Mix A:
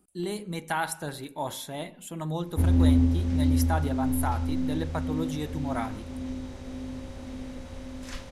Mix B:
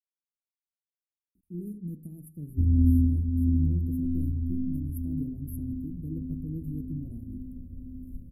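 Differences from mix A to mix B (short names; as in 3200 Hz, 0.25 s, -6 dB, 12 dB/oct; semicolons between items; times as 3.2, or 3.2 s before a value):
speech: entry +1.35 s; master: add inverse Chebyshev band-stop 830–6200 Hz, stop band 60 dB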